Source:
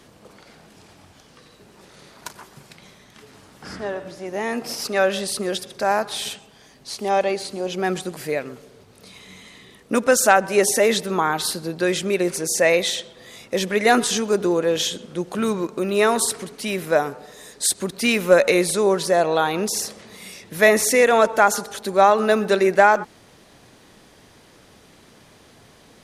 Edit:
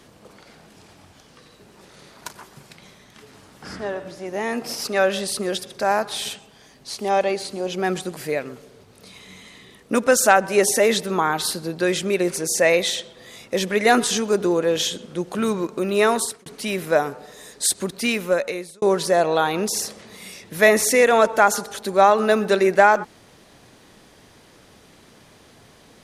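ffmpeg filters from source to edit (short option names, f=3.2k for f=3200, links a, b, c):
-filter_complex "[0:a]asplit=3[a][b][c];[a]atrim=end=16.46,asetpts=PTS-STARTPTS,afade=t=out:st=16.12:d=0.34[d];[b]atrim=start=16.46:end=18.82,asetpts=PTS-STARTPTS,afade=t=in:d=0.004:c=hsin,afade=t=out:st=1.37:d=0.99[e];[c]atrim=start=18.82,asetpts=PTS-STARTPTS,afade=t=in:d=0.004:c=hsin[f];[d][e][f]concat=n=3:v=0:a=1"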